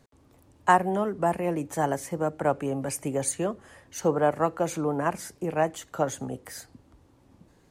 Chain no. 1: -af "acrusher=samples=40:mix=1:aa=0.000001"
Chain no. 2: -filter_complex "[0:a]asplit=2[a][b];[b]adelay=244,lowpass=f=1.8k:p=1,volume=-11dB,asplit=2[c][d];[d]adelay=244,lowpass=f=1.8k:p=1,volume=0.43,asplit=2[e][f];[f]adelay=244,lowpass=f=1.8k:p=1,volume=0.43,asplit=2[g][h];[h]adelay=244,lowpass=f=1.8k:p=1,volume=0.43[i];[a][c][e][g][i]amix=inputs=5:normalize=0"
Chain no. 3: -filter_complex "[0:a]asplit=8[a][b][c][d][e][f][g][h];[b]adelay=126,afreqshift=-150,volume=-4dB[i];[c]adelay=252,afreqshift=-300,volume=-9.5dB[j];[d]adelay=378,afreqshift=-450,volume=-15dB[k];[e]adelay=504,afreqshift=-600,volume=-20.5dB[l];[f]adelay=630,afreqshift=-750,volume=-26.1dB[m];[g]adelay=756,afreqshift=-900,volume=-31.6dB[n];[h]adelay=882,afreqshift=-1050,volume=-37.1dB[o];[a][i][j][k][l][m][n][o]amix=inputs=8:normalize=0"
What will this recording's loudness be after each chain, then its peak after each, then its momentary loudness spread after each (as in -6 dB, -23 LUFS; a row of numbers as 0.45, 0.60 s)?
-27.5, -27.5, -26.0 LUFS; -8.5, -6.5, -6.5 dBFS; 12, 11, 10 LU